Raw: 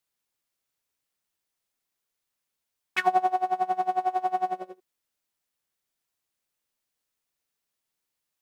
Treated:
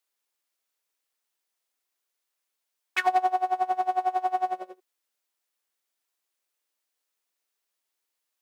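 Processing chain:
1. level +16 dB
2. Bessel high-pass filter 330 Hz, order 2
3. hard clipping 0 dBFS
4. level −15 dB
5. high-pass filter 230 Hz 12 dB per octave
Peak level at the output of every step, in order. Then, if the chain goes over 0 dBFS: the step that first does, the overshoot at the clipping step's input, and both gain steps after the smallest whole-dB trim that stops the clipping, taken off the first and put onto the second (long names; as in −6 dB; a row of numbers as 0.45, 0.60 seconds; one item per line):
+6.0, +5.0, 0.0, −15.0, −12.5 dBFS
step 1, 5.0 dB
step 1 +11 dB, step 4 −10 dB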